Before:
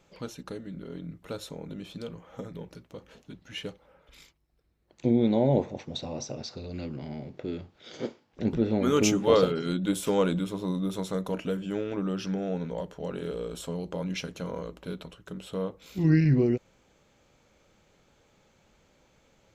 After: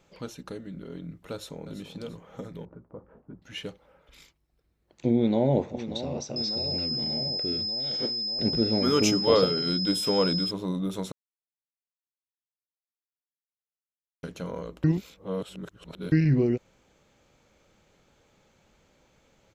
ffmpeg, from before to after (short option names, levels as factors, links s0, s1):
-filter_complex "[0:a]asplit=2[s0][s1];[s1]afade=t=in:st=1.32:d=0.01,afade=t=out:st=1.79:d=0.01,aecho=0:1:340|680|1020|1360:0.281838|0.112735|0.0450941|0.0180377[s2];[s0][s2]amix=inputs=2:normalize=0,asettb=1/sr,asplit=3[s3][s4][s5];[s3]atrim=end=2.654[s6];[s4]atrim=start=2.65:end=3.42,asetpts=PTS-STARTPTS,afade=t=in:d=0.004:c=qsin,afade=t=out:st=0.766:d=0.004:c=qsin,lowpass=f=1300:w=0.5412,lowpass=f=1300:w=1.3066[s7];[s5]atrim=start=3.416[s8];[s6][s7]acrossfade=d=0.004:c1=hsin:c2=qsin[s9];[s9][s8]acrossfade=d=0.004:c1=qsin:c2=hsin,asplit=2[s10][s11];[s11]afade=t=in:st=5.14:d=0.01,afade=t=out:st=5.61:d=0.01,aecho=0:1:590|1180|1770|2360|2950|3540|4130|4720|5310|5900|6490|7080:0.251189|0.188391|0.141294|0.10597|0.0794777|0.0596082|0.0447062|0.0335296|0.0251472|0.0188604|0.0141453|0.010609[s12];[s10][s12]amix=inputs=2:normalize=0,asettb=1/sr,asplit=3[s13][s14][s15];[s13]atrim=end=6.364[s16];[s14]atrim=start=6.36:end=10.51,asetpts=PTS-STARTPTS,afade=t=in:d=0.004:c=qsin,afade=t=out:st=4.146:d=0.004:c=qsin,aeval=exprs='val(0)+0.0398*sin(2*PI*5100*n/s)':c=same[s17];[s15]atrim=start=10.506[s18];[s16][s17]acrossfade=d=0.004:c1=hsin:c2=qsin[s19];[s19][s18]acrossfade=d=0.004:c1=qsin:c2=hsin,asplit=5[s20][s21][s22][s23][s24];[s20]atrim=end=11.12,asetpts=PTS-STARTPTS,afade=t=out:st=11.116:d=0.004:c=hsin[s25];[s21]atrim=start=11.12:end=14.23,asetpts=PTS-STARTPTS,volume=0[s26];[s22]atrim=start=14.23:end=14.842,asetpts=PTS-STARTPTS,afade=t=in:d=0.004:c=hsin[s27];[s23]atrim=start=14.838:end=16.122,asetpts=PTS-STARTPTS,areverse[s28];[s24]atrim=start=16.118[s29];[s25][s26][s27]concat=n=3:v=0:a=1[s30];[s30][s28]acrossfade=d=0.004:c1=hsin:c2=hsin[s31];[s31][s29]acrossfade=d=0.004:c1=hsin:c2=hsin"